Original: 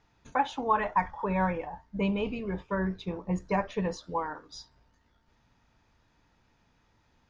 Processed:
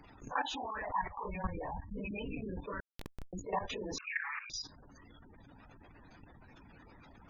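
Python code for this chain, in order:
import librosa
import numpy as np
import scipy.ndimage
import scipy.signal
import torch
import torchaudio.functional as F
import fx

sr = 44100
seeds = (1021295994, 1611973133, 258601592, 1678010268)

y = fx.phase_scramble(x, sr, seeds[0], window_ms=100)
y = fx.spec_gate(y, sr, threshold_db=-20, keep='strong')
y = fx.low_shelf(y, sr, hz=130.0, db=11.0, at=(1.17, 2.11))
y = fx.hpss(y, sr, part='harmonic', gain_db=-17)
y = fx.peak_eq(y, sr, hz=280.0, db=7.0, octaves=0.22)
y = fx.level_steps(y, sr, step_db=17)
y = fx.schmitt(y, sr, flips_db=-43.0, at=(2.8, 3.33))
y = fx.freq_invert(y, sr, carrier_hz=2700, at=(3.98, 4.5))
y = fx.env_flatten(y, sr, amount_pct=50)
y = y * librosa.db_to_amplitude(2.0)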